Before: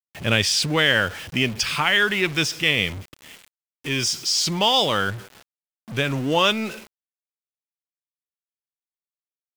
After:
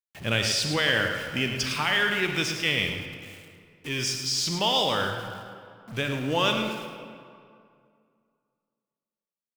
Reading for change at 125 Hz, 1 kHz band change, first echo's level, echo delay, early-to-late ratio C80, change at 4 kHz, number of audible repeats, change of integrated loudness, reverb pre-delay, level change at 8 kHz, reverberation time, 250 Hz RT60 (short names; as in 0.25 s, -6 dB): -4.5 dB, -4.5 dB, -9.0 dB, 0.107 s, 5.0 dB, -4.5 dB, 1, -5.0 dB, 32 ms, -5.0 dB, 2.3 s, 2.3 s